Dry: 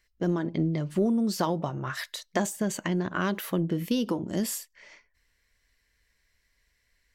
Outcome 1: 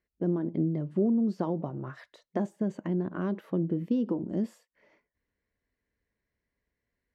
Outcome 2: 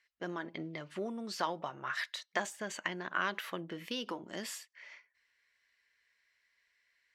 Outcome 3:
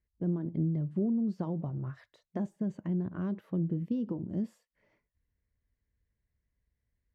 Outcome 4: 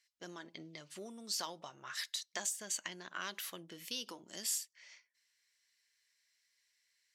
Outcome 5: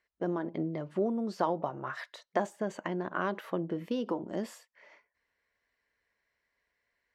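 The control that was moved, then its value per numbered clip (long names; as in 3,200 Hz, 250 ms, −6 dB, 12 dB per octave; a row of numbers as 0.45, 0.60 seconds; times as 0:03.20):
resonant band-pass, frequency: 270, 2,000, 110, 5,900, 740 Hertz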